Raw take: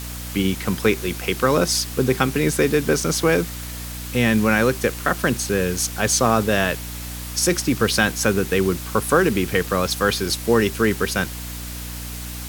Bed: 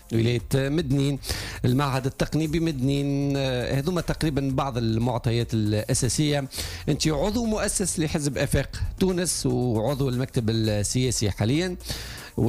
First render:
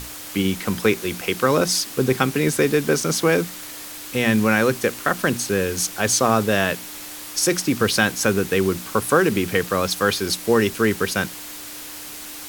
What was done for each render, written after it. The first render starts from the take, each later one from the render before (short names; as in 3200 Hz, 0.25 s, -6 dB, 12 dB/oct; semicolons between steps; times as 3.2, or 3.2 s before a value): notches 60/120/180/240 Hz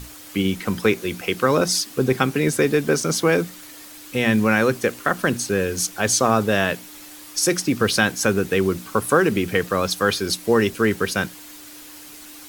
denoiser 7 dB, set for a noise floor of -36 dBFS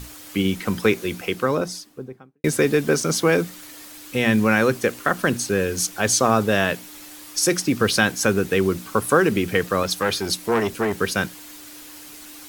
0.99–2.44 studio fade out; 9.83–10.99 core saturation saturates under 1000 Hz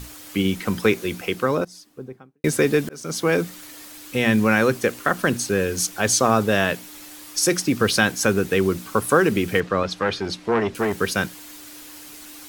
1.65–2.1 fade in, from -18 dB; 2.89–3.58 fade in equal-power; 9.6–10.75 Bessel low-pass 3200 Hz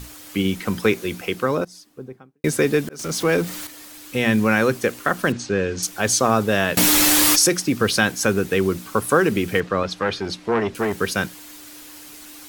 2.99–3.67 zero-crossing step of -30 dBFS; 5.32–5.83 Bessel low-pass 4600 Hz, order 8; 6.77–7.5 fast leveller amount 100%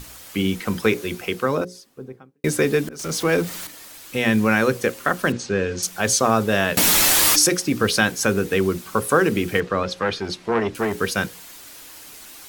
notches 60/120/180/240/300/360/420/480/540 Hz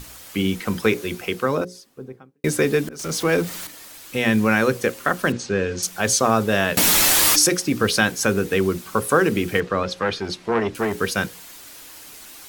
nothing audible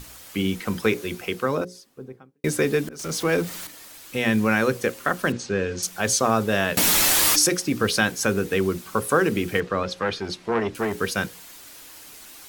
gain -2.5 dB